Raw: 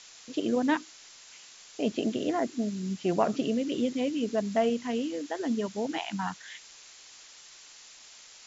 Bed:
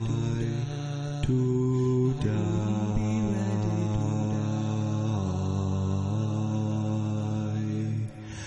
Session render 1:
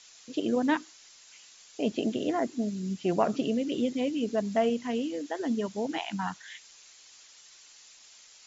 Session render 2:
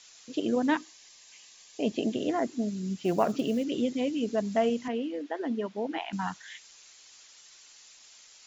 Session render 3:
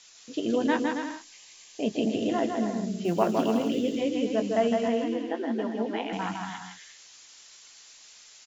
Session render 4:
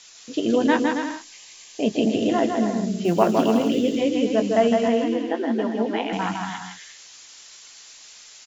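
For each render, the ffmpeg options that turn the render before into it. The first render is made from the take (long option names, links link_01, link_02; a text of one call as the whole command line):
ffmpeg -i in.wav -af "afftdn=noise_reduction=6:noise_floor=-52" out.wav
ffmpeg -i in.wav -filter_complex "[0:a]asettb=1/sr,asplit=3[link_01][link_02][link_03];[link_01]atrim=end=0.774[link_04];[link_02]atrim=start=0.77:end=2.16,asetpts=PTS-STARTPTS,afade=type=in:duration=0.004:curve=qsin,afade=type=out:start_time=1.386:duration=0.004:curve=qsin,asuperstop=centerf=1400:order=12:qfactor=5.8[link_05];[link_03]atrim=start=2.156[link_06];[link_04][link_05]acrossfade=duration=0.004:curve1=hsin:curve2=qsin[link_07];[link_07][link_06]acrossfade=duration=0.004:curve1=qsin:curve2=hsin,asplit=3[link_08][link_09][link_10];[link_08]afade=type=out:start_time=2.96:duration=0.02[link_11];[link_09]acrusher=bits=8:mode=log:mix=0:aa=0.000001,afade=type=in:start_time=2.96:duration=0.02,afade=type=out:start_time=3.63:duration=0.02[link_12];[link_10]afade=type=in:start_time=3.63:duration=0.02[link_13];[link_11][link_12][link_13]amix=inputs=3:normalize=0,asettb=1/sr,asplit=3[link_14][link_15][link_16];[link_14]atrim=end=4.884[link_17];[link_15]atrim=start=4.88:end=6.13,asetpts=PTS-STARTPTS,afade=type=in:duration=0.004:curve=qsin,afade=type=out:start_time=1.246:duration=0.004:curve=qsin,highpass=220,lowpass=2900[link_18];[link_16]atrim=start=6.126[link_19];[link_17][link_18]acrossfade=duration=0.004:curve1=hsin:curve2=qsin[link_20];[link_20][link_19]acrossfade=duration=0.004:curve1=qsin:curve2=hsin" out.wav
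ffmpeg -i in.wav -filter_complex "[0:a]asplit=2[link_01][link_02];[link_02]adelay=18,volume=-11dB[link_03];[link_01][link_03]amix=inputs=2:normalize=0,aecho=1:1:160|272|350.4|405.3|443.7:0.631|0.398|0.251|0.158|0.1" out.wav
ffmpeg -i in.wav -af "volume=6dB" out.wav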